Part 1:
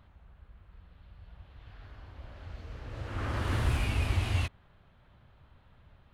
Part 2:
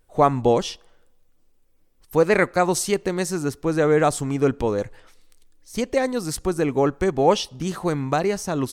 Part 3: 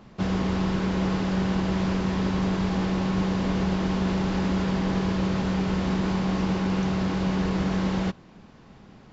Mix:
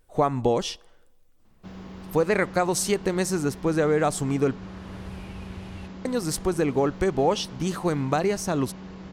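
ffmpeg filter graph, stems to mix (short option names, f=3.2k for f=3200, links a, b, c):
-filter_complex "[0:a]adelay=1400,volume=-12.5dB[a];[1:a]acompressor=threshold=-19dB:ratio=3,volume=0dB,asplit=3[b][c][d];[b]atrim=end=4.58,asetpts=PTS-STARTPTS,afade=t=out:st=4.576:d=0.004:c=hsin[e];[c]atrim=start=4.58:end=6.05,asetpts=PTS-STARTPTS,volume=0[f];[d]atrim=start=6.05,asetpts=PTS-STARTPTS,afade=t=in:d=0.004:c=hsin[g];[e][f][g]concat=n=3:v=0:a=1,asplit=2[h][i];[2:a]adelay=1450,volume=-15.5dB[j];[i]apad=whole_len=332178[k];[a][k]sidechaincompress=threshold=-29dB:ratio=8:attack=16:release=243[l];[l][h][j]amix=inputs=3:normalize=0"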